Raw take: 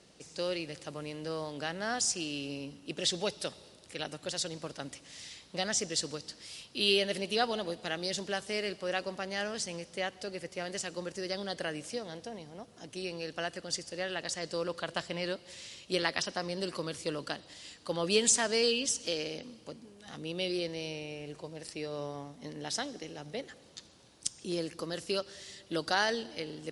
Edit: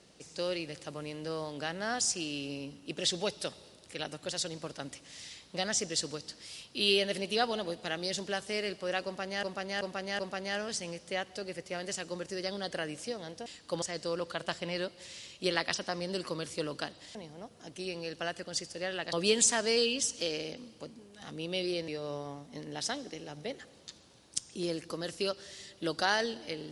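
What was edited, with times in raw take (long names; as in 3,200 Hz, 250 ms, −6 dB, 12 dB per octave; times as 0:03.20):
0:09.05–0:09.43: repeat, 4 plays
0:12.32–0:14.30: swap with 0:17.63–0:17.99
0:20.74–0:21.77: remove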